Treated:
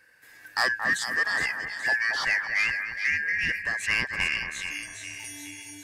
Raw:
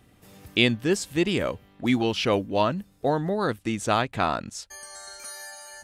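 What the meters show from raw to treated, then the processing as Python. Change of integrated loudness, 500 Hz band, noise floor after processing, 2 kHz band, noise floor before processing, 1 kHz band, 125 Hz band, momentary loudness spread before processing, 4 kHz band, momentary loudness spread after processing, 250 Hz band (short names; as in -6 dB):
-0.5 dB, -17.0 dB, -52 dBFS, +9.5 dB, -58 dBFS, -7.5 dB, -16.0 dB, 16 LU, -3.0 dB, 13 LU, -19.5 dB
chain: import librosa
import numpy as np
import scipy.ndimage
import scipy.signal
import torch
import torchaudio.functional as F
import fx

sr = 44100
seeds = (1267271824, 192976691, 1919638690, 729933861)

y = fx.band_shuffle(x, sr, order='2143')
y = fx.echo_split(y, sr, split_hz=2100.0, low_ms=226, high_ms=419, feedback_pct=52, wet_db=-7.5)
y = 10.0 ** (-13.0 / 20.0) * np.tanh(y / 10.0 ** (-13.0 / 20.0))
y = F.gain(torch.from_numpy(y), -2.0).numpy()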